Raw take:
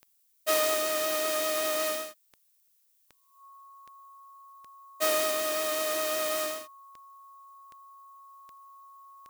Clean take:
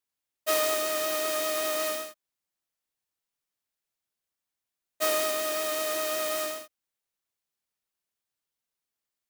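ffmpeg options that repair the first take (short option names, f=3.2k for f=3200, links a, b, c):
-af "adeclick=t=4,bandreject=f=1.1k:w=30,agate=range=-21dB:threshold=-60dB,asetnsamples=n=441:p=0,asendcmd='8.28 volume volume -4dB',volume=0dB"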